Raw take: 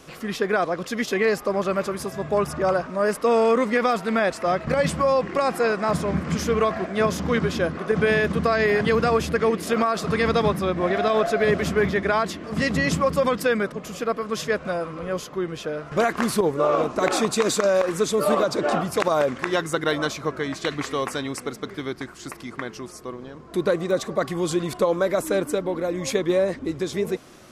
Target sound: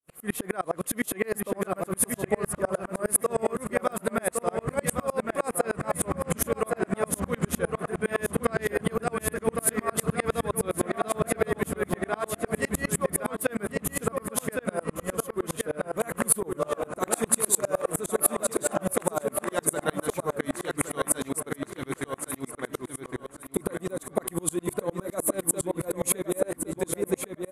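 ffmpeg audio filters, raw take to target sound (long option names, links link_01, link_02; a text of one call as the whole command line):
ffmpeg -i in.wav -filter_complex "[0:a]acompressor=threshold=-24dB:ratio=6,agate=range=-33dB:threshold=-32dB:ratio=3:detection=peak,highshelf=frequency=7300:width_type=q:width=3:gain=13,asplit=2[link_01][link_02];[link_02]adelay=1113,lowpass=frequency=4900:poles=1,volume=-3.5dB,asplit=2[link_03][link_04];[link_04]adelay=1113,lowpass=frequency=4900:poles=1,volume=0.35,asplit=2[link_05][link_06];[link_06]adelay=1113,lowpass=frequency=4900:poles=1,volume=0.35,asplit=2[link_07][link_08];[link_08]adelay=1113,lowpass=frequency=4900:poles=1,volume=0.35,asplit=2[link_09][link_10];[link_10]adelay=1113,lowpass=frequency=4900:poles=1,volume=0.35[link_11];[link_01][link_03][link_05][link_07][link_09][link_11]amix=inputs=6:normalize=0,alimiter=level_in=9dB:limit=-1dB:release=50:level=0:latency=1,aeval=exprs='val(0)*pow(10,-34*if(lt(mod(-9.8*n/s,1),2*abs(-9.8)/1000),1-mod(-9.8*n/s,1)/(2*abs(-9.8)/1000),(mod(-9.8*n/s,1)-2*abs(-9.8)/1000)/(1-2*abs(-9.8)/1000))/20)':channel_layout=same,volume=-3dB" out.wav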